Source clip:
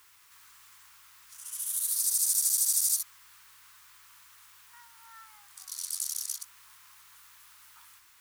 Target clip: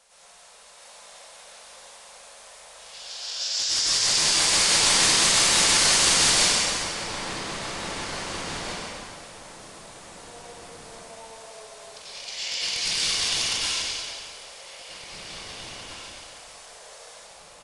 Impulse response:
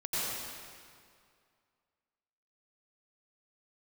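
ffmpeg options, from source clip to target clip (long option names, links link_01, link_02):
-filter_complex "[0:a]acrossover=split=150|1200[link_01][link_02][link_03];[link_03]aeval=exprs='(mod(11.9*val(0)+1,2)-1)/11.9':channel_layout=same[link_04];[link_01][link_02][link_04]amix=inputs=3:normalize=0,atempo=0.93,asplit=2[link_05][link_06];[link_06]adelay=1137,lowpass=frequency=2000:poles=1,volume=-4dB,asplit=2[link_07][link_08];[link_08]adelay=1137,lowpass=frequency=2000:poles=1,volume=0.25,asplit=2[link_09][link_10];[link_10]adelay=1137,lowpass=frequency=2000:poles=1,volume=0.25[link_11];[link_05][link_07][link_09][link_11]amix=inputs=4:normalize=0[link_12];[1:a]atrim=start_sample=2205,asetrate=79380,aresample=44100[link_13];[link_12][link_13]afir=irnorm=-1:irlink=0,asetrate=22050,aresample=44100,volume=8dB"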